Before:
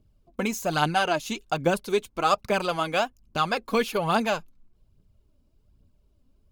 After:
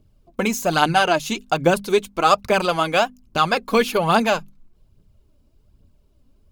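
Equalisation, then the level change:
mains-hum notches 50/100/150/200/250 Hz
+6.5 dB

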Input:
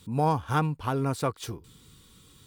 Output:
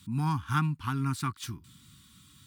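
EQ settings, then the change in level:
high-pass filter 66 Hz
Chebyshev band-stop filter 250–1,200 Hz, order 2
0.0 dB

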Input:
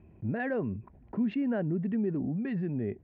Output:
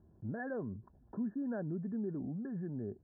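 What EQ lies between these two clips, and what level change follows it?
linear-phase brick-wall low-pass 1,800 Hz
−8.0 dB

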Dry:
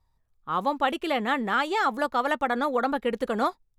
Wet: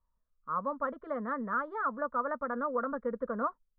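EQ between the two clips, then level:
transistor ladder low-pass 1,600 Hz, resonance 30%
phaser with its sweep stopped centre 530 Hz, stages 8
0.0 dB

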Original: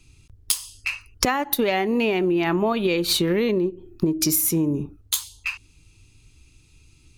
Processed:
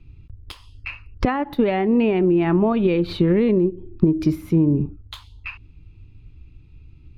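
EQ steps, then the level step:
high-frequency loss of the air 400 metres
low-shelf EQ 300 Hz +10 dB
0.0 dB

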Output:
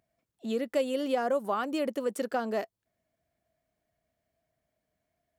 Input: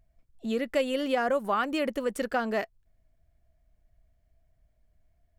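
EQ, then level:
dynamic equaliser 2,000 Hz, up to −8 dB, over −44 dBFS, Q 0.83
high-pass filter 210 Hz 12 dB per octave
0.0 dB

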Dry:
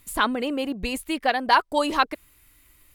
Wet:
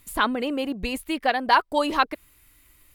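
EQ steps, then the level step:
dynamic equaliser 7,700 Hz, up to −5 dB, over −44 dBFS, Q 1.1
0.0 dB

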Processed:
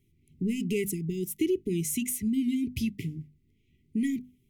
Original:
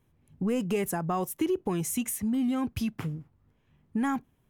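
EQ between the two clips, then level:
linear-phase brick-wall band-stop 440–1,900 Hz
mains-hum notches 50/100/150/200/250 Hz
+1.0 dB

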